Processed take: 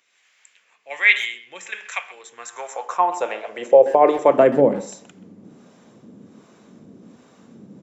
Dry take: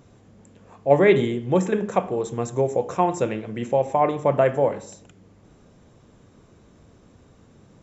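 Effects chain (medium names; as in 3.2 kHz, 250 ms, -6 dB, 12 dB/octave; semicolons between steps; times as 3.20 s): high-pass sweep 2.2 kHz -> 210 Hz, 2.11–4.71 s; harmonic tremolo 1.3 Hz, depth 70%, crossover 550 Hz; speakerphone echo 130 ms, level -16 dB; trim +6.5 dB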